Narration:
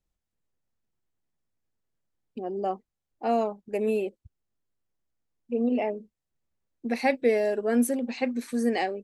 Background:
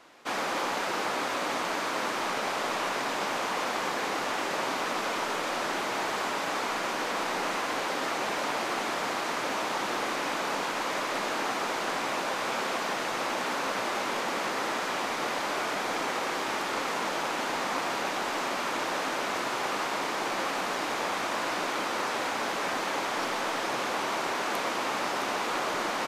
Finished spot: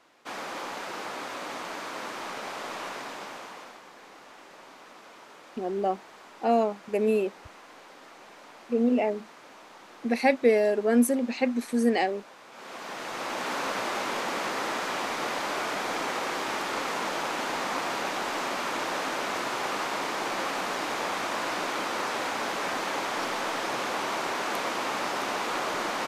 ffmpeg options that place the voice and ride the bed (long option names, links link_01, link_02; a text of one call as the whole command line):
ffmpeg -i stem1.wav -i stem2.wav -filter_complex "[0:a]adelay=3200,volume=2dB[link_01];[1:a]volume=13dB,afade=type=out:start_time=2.87:duration=0.95:silence=0.223872,afade=type=in:start_time=12.51:duration=1.07:silence=0.112202[link_02];[link_01][link_02]amix=inputs=2:normalize=0" out.wav